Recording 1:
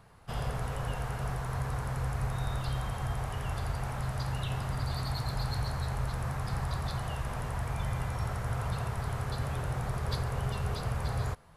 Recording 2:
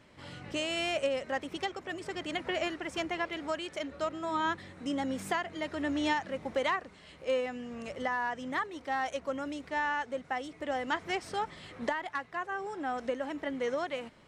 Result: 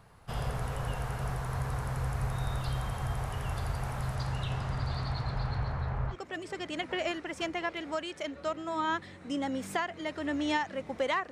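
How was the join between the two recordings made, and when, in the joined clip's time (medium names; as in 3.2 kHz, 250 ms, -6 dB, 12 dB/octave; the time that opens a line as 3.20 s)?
recording 1
4.15–6.16 s: low-pass 10 kHz -> 1.7 kHz
6.13 s: go over to recording 2 from 1.69 s, crossfade 0.06 s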